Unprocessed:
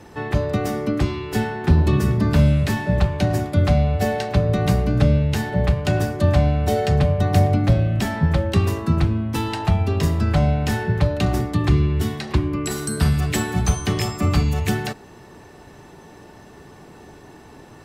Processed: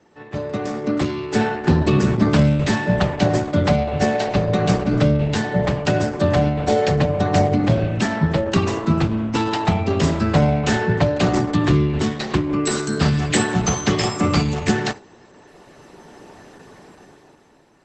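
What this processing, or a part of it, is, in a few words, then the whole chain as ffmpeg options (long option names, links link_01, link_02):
video call: -filter_complex "[0:a]asettb=1/sr,asplit=3[link_01][link_02][link_03];[link_01]atrim=end=3.734[link_04];[link_02]atrim=start=3.73:end=4.91,asetpts=PTS-STARTPTS,afade=type=in:duration=0.004:curve=qsin,afade=type=out:start_time=1.176:duration=0.004:curve=qsin,bandreject=frequency=145.9:width_type=h:width=4,bandreject=frequency=291.8:width_type=h:width=4,bandreject=frequency=437.7:width_type=h:width=4,bandreject=frequency=583.6:width_type=h:width=4,bandreject=frequency=729.5:width_type=h:width=4,bandreject=frequency=875.4:width_type=h:width=4,bandreject=frequency=1021.3:width_type=h:width=4,bandreject=frequency=1167.2:width_type=h:width=4,bandreject=frequency=1313.1:width_type=h:width=4,bandreject=frequency=1459:width_type=h:width=4,bandreject=frequency=1604.9:width_type=h:width=4,bandreject=frequency=1750.8:width_type=h:width=4,bandreject=frequency=1896.7:width_type=h:width=4,bandreject=frequency=2042.6:width_type=h:width=4,bandreject=frequency=2188.5:width_type=h:width=4,bandreject=frequency=2334.4:width_type=h:width=4,bandreject=frequency=2480.3:width_type=h:width=4,bandreject=frequency=2626.2:width_type=h:width=4,bandreject=frequency=2772.1:width_type=h:width=4,bandreject=frequency=2918:width_type=h:width=4,bandreject=frequency=3063.9:width_type=h:width=4,bandreject=frequency=3209.8:width_type=h:width=4,bandreject=frequency=3355.7:width_type=h:width=4,bandreject=frequency=3501.6:width_type=h:width=4,bandreject=frequency=3647.5:width_type=h:width=4,bandreject=frequency=3793.4:width_type=h:width=4,bandreject=frequency=3939.3:width_type=h:width=4,bandreject=frequency=4085.2:width_type=h:width=4,bandreject=frequency=4231.1:width_type=h:width=4,bandreject=frequency=4377:width_type=h:width=4,bandreject=frequency=4522.9:width_type=h:width=4,bandreject=frequency=4668.8:width_type=h:width=4,bandreject=frequency=4814.7:width_type=h:width=4[link_05];[link_03]atrim=start=4.906[link_06];[link_04][link_05]acrossfade=duration=0.004:curve1=hsin:curve2=qsin[link_07];[link_07][link_06]acrossfade=duration=0.004:curve1=qsin:curve2=hsin,highpass=160,dynaudnorm=framelen=170:gausssize=11:maxgain=13.5dB,agate=range=-8dB:threshold=-26dB:ratio=16:detection=peak,volume=-2.5dB" -ar 48000 -c:a libopus -b:a 12k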